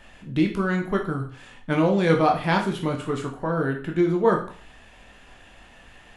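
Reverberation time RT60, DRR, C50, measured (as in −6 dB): 0.45 s, 1.5 dB, 9.0 dB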